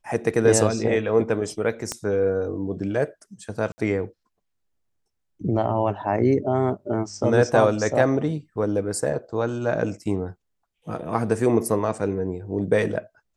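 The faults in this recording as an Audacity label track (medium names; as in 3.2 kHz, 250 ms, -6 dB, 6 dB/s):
1.920000	1.920000	pop -13 dBFS
3.720000	3.780000	dropout 60 ms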